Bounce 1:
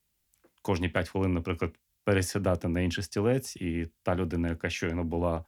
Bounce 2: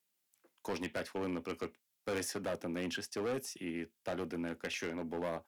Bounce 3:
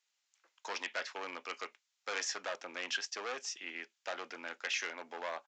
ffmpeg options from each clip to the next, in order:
ffmpeg -i in.wav -af "highpass=270,asoftclip=type=hard:threshold=-27.5dB,volume=-4.5dB" out.wav
ffmpeg -i in.wav -af "highpass=980,aresample=16000,aresample=44100,volume=5.5dB" out.wav

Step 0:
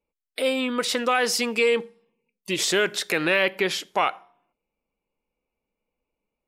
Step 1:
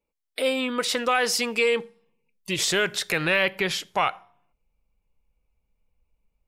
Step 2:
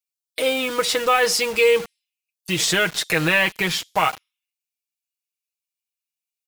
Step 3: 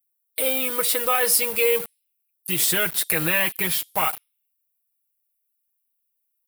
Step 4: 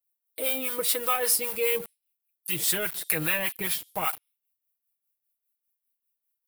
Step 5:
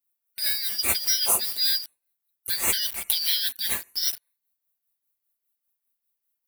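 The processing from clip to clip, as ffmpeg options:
ffmpeg -i in.wav -af "asubboost=boost=10.5:cutoff=97" out.wav
ffmpeg -i in.wav -filter_complex "[0:a]aecho=1:1:6.3:0.64,acrossover=split=3200[link_01][link_02];[link_01]acrusher=bits=5:mix=0:aa=0.000001[link_03];[link_03][link_02]amix=inputs=2:normalize=0,volume=2.5dB" out.wav
ffmpeg -i in.wav -af "aexciter=amount=9.4:drive=3.7:freq=9100,volume=-5dB" out.wav
ffmpeg -i in.wav -filter_complex "[0:a]acrossover=split=720[link_01][link_02];[link_01]aeval=exprs='val(0)*(1-0.7/2+0.7/2*cos(2*PI*5*n/s))':channel_layout=same[link_03];[link_02]aeval=exprs='val(0)*(1-0.7/2-0.7/2*cos(2*PI*5*n/s))':channel_layout=same[link_04];[link_03][link_04]amix=inputs=2:normalize=0,volume=-2dB" out.wav
ffmpeg -i in.wav -af "afftfilt=real='real(if(lt(b,272),68*(eq(floor(b/68),0)*3+eq(floor(b/68),1)*2+eq(floor(b/68),2)*1+eq(floor(b/68),3)*0)+mod(b,68),b),0)':imag='imag(if(lt(b,272),68*(eq(floor(b/68),0)*3+eq(floor(b/68),1)*2+eq(floor(b/68),2)*1+eq(floor(b/68),3)*0)+mod(b,68),b),0)':win_size=2048:overlap=0.75,volume=2dB" out.wav

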